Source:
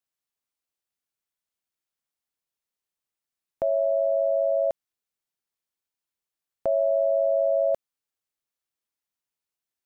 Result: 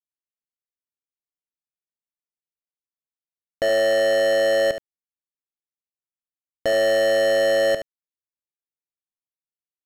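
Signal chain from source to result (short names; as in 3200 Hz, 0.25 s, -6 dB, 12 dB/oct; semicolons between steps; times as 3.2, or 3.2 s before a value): Wiener smoothing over 41 samples; sample leveller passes 5; on a send: echo 72 ms -10.5 dB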